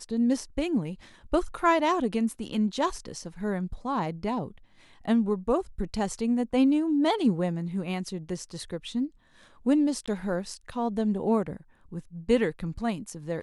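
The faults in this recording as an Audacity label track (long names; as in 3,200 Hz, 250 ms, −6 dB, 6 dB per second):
10.060000	10.080000	drop-out 16 ms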